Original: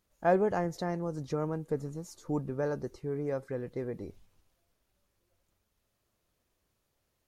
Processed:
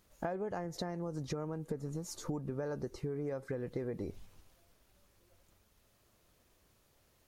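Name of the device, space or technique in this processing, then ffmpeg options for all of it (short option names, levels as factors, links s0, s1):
serial compression, leveller first: -af "acompressor=threshold=0.02:ratio=2.5,acompressor=threshold=0.00631:ratio=6,volume=2.66"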